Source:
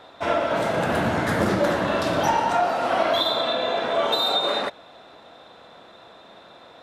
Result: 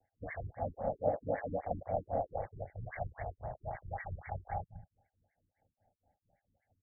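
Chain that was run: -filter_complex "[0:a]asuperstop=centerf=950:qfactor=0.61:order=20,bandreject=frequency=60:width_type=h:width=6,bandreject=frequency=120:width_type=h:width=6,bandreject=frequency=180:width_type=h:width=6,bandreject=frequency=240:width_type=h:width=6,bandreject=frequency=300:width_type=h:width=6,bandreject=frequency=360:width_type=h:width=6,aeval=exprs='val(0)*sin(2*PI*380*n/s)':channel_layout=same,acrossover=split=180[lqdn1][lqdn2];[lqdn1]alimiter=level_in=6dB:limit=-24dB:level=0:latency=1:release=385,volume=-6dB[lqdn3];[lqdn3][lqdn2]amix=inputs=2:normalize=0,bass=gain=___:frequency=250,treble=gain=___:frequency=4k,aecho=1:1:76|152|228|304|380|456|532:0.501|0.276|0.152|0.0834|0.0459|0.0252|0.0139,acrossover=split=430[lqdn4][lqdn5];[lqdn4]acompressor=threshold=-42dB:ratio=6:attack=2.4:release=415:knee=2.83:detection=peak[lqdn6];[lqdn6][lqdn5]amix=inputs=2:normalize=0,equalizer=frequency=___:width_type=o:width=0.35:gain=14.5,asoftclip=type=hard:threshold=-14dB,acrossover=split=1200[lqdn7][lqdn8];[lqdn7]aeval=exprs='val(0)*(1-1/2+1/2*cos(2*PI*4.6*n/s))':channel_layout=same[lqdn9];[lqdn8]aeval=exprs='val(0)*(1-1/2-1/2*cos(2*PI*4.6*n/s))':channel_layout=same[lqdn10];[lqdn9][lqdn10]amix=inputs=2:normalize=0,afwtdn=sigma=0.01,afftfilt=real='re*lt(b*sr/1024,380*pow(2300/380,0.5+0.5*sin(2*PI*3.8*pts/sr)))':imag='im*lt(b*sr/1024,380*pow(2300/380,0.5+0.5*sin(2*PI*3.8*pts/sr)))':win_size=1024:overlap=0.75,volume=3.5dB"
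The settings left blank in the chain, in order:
-6, 8, 97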